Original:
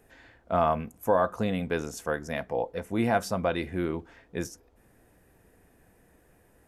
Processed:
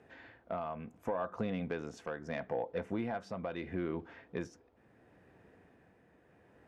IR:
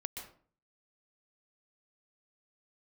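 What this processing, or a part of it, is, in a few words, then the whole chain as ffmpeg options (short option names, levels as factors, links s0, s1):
AM radio: -af "highpass=100,lowpass=3300,acompressor=threshold=0.0282:ratio=8,asoftclip=type=tanh:threshold=0.0708,tremolo=f=0.74:d=0.39,volume=1.12"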